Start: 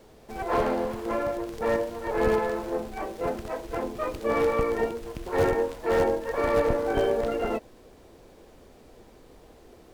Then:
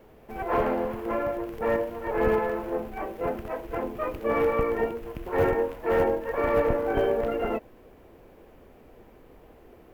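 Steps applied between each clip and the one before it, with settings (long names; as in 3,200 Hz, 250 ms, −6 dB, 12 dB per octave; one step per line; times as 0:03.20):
flat-topped bell 5,900 Hz −11.5 dB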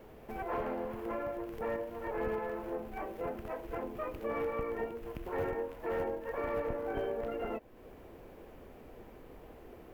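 downward compressor 2 to 1, threshold −42 dBFS, peak gain reduction 13 dB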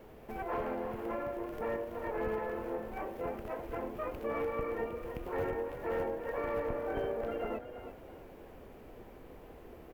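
echo with shifted repeats 332 ms, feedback 35%, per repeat +31 Hz, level −10.5 dB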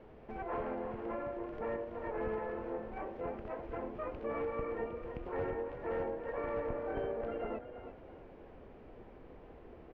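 high-frequency loss of the air 230 metres
level −1.5 dB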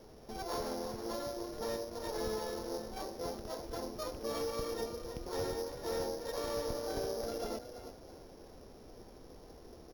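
samples sorted by size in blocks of 8 samples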